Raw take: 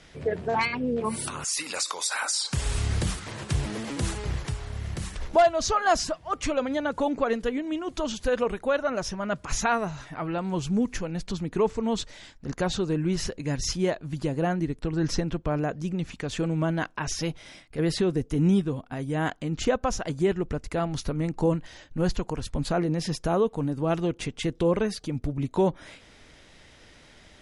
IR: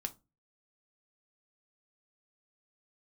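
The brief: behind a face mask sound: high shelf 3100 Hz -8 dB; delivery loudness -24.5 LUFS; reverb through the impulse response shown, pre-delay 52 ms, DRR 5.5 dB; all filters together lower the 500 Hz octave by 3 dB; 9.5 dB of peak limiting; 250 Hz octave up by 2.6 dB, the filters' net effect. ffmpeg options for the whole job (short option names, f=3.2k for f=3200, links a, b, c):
-filter_complex "[0:a]equalizer=f=250:t=o:g=5.5,equalizer=f=500:t=o:g=-5.5,alimiter=limit=-21dB:level=0:latency=1,asplit=2[a][b];[1:a]atrim=start_sample=2205,adelay=52[c];[b][c]afir=irnorm=-1:irlink=0,volume=-4.5dB[d];[a][d]amix=inputs=2:normalize=0,highshelf=f=3.1k:g=-8,volume=6dB"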